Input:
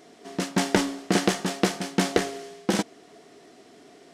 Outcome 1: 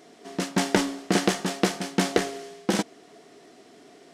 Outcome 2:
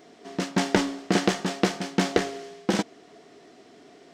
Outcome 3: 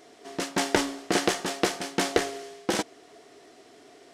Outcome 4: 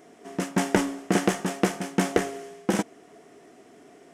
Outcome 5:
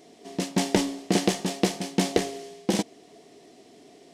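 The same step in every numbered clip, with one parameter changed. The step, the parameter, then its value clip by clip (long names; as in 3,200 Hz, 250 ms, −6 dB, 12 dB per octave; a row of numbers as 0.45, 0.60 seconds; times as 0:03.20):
parametric band, centre frequency: 61, 11,000, 190, 4,200, 1,400 Hertz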